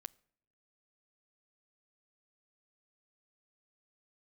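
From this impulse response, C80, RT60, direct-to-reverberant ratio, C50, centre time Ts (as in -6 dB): 28.0 dB, no single decay rate, 20.0 dB, 26.0 dB, 1 ms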